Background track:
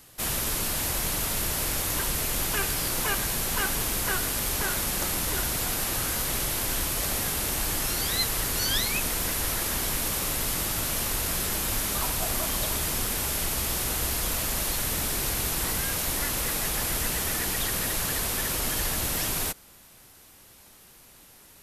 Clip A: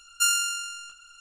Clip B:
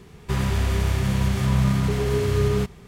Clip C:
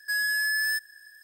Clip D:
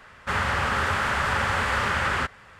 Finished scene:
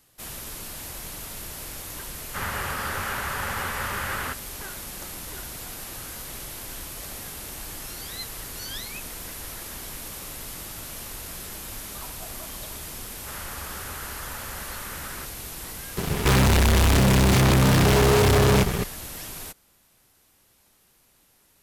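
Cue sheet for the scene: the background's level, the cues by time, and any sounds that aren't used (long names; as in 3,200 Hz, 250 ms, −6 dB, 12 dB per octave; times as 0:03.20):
background track −9 dB
0:02.07: mix in D −6 dB
0:12.99: mix in D −15.5 dB
0:15.97: mix in B −3.5 dB + fuzz pedal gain 40 dB, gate −50 dBFS
not used: A, C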